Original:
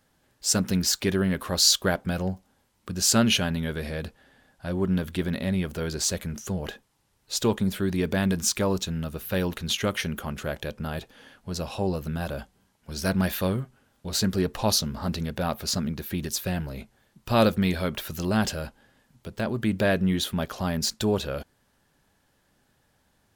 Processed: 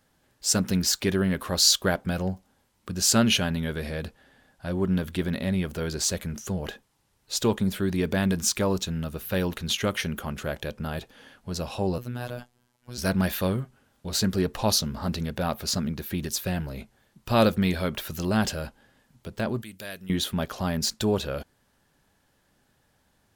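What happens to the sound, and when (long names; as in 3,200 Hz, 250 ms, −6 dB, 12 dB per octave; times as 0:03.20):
0:11.98–0:12.98: phases set to zero 122 Hz
0:19.62–0:20.10: first-order pre-emphasis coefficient 0.9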